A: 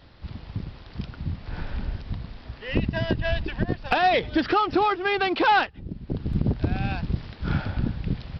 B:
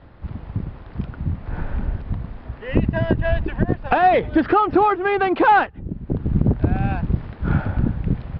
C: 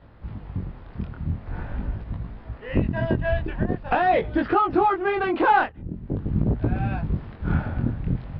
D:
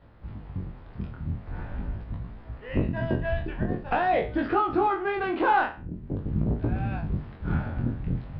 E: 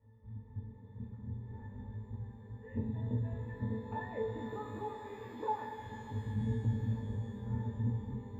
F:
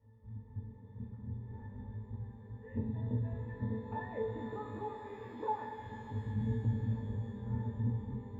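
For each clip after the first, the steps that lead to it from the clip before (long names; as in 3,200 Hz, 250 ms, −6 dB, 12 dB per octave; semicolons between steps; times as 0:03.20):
low-pass filter 1,600 Hz 12 dB per octave; level +6 dB
chorus effect 0.45 Hz, delay 17.5 ms, depth 8 ms; level −1 dB
peak hold with a decay on every bin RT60 0.35 s; level −5 dB
resonances in every octave A, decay 0.14 s; reverb with rising layers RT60 3.7 s, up +12 semitones, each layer −8 dB, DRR 5.5 dB; level −2 dB
high-shelf EQ 5,300 Hz −11 dB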